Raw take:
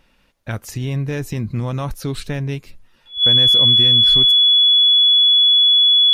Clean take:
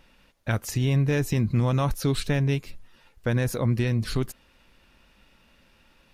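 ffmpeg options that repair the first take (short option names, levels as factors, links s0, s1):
-af "bandreject=f=3400:w=30"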